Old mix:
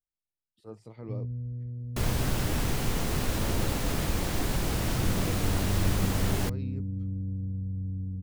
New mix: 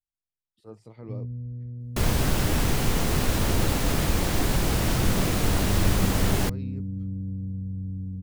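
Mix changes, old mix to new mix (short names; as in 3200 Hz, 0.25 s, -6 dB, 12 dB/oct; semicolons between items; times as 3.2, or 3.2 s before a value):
first sound: add bell 210 Hz +5 dB 0.45 oct; second sound +5.0 dB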